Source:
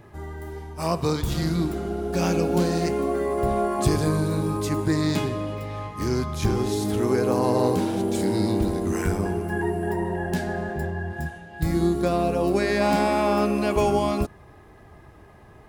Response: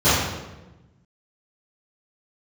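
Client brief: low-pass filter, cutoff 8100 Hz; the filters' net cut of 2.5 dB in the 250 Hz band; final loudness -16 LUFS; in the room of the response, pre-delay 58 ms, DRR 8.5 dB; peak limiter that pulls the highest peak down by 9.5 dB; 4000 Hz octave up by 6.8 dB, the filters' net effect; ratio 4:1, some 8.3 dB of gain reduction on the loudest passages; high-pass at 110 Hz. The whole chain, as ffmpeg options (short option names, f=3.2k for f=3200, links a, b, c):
-filter_complex "[0:a]highpass=110,lowpass=8.1k,equalizer=f=250:t=o:g=-3.5,equalizer=f=4k:t=o:g=8.5,acompressor=threshold=-28dB:ratio=4,alimiter=level_in=1.5dB:limit=-24dB:level=0:latency=1,volume=-1.5dB,asplit=2[a][b];[1:a]atrim=start_sample=2205,adelay=58[c];[b][c]afir=irnorm=-1:irlink=0,volume=-31.5dB[d];[a][d]amix=inputs=2:normalize=0,volume=17.5dB"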